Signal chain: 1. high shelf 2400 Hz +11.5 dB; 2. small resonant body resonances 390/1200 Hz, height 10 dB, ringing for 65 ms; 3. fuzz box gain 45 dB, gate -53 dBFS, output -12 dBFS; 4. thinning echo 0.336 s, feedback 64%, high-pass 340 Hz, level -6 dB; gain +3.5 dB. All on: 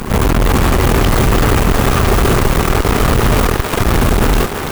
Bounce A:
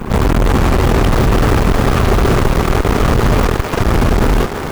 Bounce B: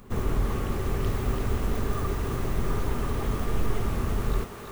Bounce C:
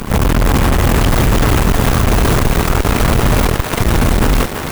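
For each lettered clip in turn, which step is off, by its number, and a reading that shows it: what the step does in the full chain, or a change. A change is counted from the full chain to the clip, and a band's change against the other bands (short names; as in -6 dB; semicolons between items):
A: 1, 8 kHz band -5.5 dB; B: 3, crest factor change +2.0 dB; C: 2, 500 Hz band -2.0 dB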